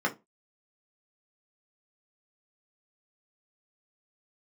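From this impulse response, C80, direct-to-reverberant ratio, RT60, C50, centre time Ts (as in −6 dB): 27.5 dB, −0.5 dB, 0.20 s, 17.5 dB, 10 ms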